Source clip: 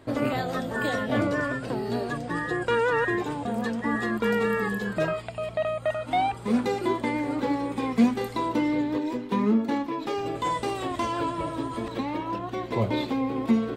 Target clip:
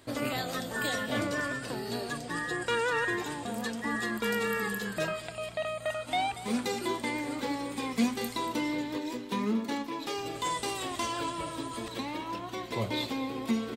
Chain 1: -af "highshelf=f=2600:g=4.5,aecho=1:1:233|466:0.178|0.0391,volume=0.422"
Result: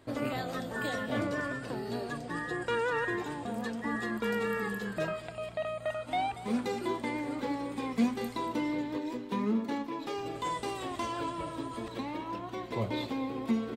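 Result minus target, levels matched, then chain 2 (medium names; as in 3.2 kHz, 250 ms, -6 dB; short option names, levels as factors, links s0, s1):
4 kHz band -5.5 dB
-af "highshelf=f=2600:g=15.5,aecho=1:1:233|466:0.178|0.0391,volume=0.422"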